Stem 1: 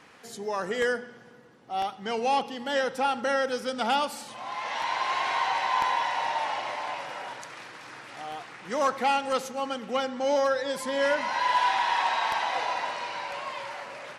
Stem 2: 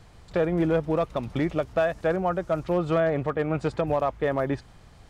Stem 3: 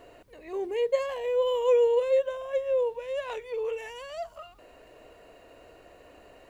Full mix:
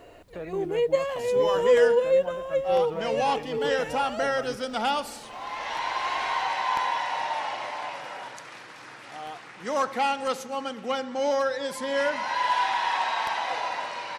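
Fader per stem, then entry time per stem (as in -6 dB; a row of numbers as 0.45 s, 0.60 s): -0.5 dB, -14.0 dB, +2.5 dB; 0.95 s, 0.00 s, 0.00 s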